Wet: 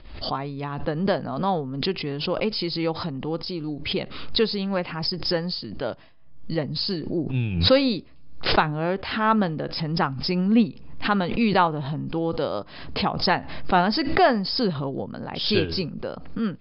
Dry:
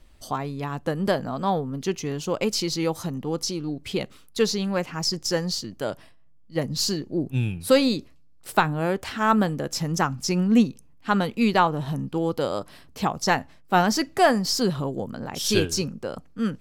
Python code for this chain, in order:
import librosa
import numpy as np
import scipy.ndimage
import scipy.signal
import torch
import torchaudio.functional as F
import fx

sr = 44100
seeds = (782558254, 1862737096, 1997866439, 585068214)

y = scipy.signal.sosfilt(scipy.signal.cheby1(10, 1.0, 5100.0, 'lowpass', fs=sr, output='sos'), x)
y = fx.pre_swell(y, sr, db_per_s=65.0)